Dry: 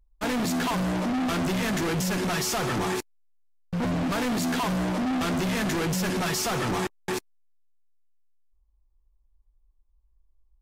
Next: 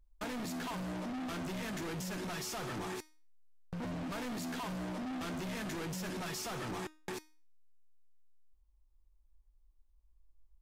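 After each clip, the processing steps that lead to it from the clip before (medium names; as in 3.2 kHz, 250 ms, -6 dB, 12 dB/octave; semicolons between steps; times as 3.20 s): compression 3:1, threshold -40 dBFS, peak gain reduction 10.5 dB; feedback comb 310 Hz, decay 0.39 s, harmonics all, mix 60%; trim +4.5 dB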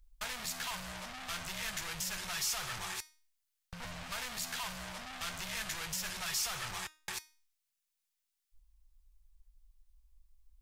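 amplifier tone stack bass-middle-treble 10-0-10; trim +9 dB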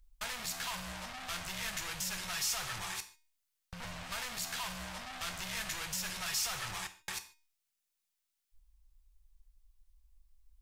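gated-style reverb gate 170 ms falling, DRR 9.5 dB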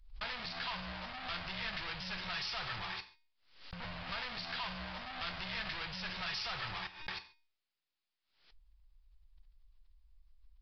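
resampled via 11.025 kHz; swell ahead of each attack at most 96 dB/s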